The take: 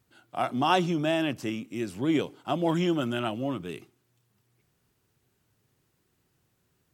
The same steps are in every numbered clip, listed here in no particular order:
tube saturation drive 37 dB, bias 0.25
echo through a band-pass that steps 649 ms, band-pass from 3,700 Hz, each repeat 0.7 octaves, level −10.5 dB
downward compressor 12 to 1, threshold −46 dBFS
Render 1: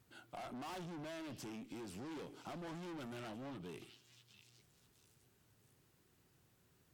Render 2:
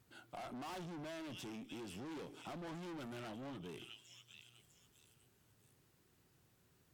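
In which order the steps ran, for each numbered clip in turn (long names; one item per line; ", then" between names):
tube saturation, then echo through a band-pass that steps, then downward compressor
echo through a band-pass that steps, then tube saturation, then downward compressor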